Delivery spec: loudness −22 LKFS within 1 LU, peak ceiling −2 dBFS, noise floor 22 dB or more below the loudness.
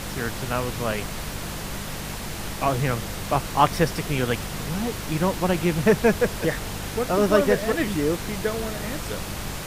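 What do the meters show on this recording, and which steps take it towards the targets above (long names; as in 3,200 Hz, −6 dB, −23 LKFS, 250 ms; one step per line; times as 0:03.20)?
mains hum 50 Hz; hum harmonics up to 200 Hz; level of the hum −35 dBFS; background noise floor −33 dBFS; target noise floor −47 dBFS; integrated loudness −25.0 LKFS; sample peak −3.0 dBFS; target loudness −22.0 LKFS
→ hum removal 50 Hz, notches 4
noise reduction from a noise print 14 dB
level +3 dB
brickwall limiter −2 dBFS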